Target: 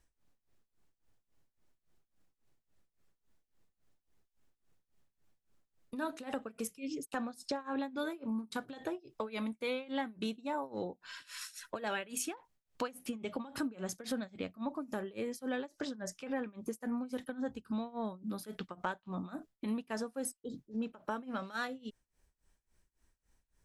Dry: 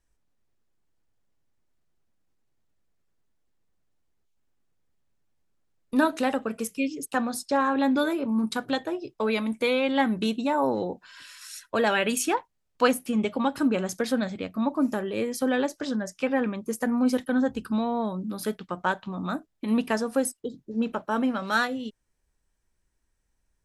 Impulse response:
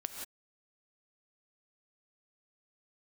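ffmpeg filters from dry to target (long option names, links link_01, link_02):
-af "tremolo=f=3.6:d=0.93,acompressor=threshold=-42dB:ratio=3,volume=3.5dB"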